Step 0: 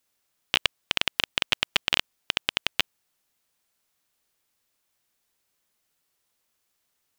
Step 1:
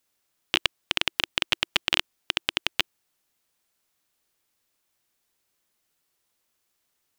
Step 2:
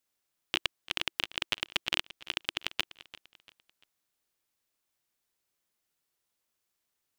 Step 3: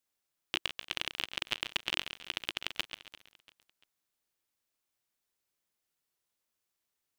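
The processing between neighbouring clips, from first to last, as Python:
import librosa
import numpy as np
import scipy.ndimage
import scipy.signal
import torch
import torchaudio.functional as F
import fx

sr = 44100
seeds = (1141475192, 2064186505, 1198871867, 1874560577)

y1 = fx.peak_eq(x, sr, hz=340.0, db=3.0, octaves=0.32)
y2 = fx.echo_feedback(y1, sr, ms=343, feedback_pct=38, wet_db=-18.0)
y2 = y2 * 10.0 ** (-7.0 / 20.0)
y3 = fx.echo_crushed(y2, sr, ms=136, feedback_pct=35, bits=7, wet_db=-9.0)
y3 = y3 * 10.0 ** (-3.0 / 20.0)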